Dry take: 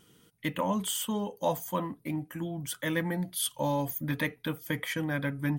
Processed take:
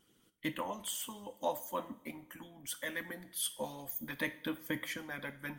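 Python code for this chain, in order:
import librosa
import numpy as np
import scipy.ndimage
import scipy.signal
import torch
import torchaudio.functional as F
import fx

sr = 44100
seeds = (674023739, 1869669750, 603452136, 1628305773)

y = fx.hum_notches(x, sr, base_hz=60, count=2)
y = fx.hpss(y, sr, part='harmonic', gain_db=-16)
y = fx.rev_double_slope(y, sr, seeds[0], early_s=0.49, late_s=2.4, knee_db=-21, drr_db=9.0)
y = F.gain(torch.from_numpy(y), -4.0).numpy()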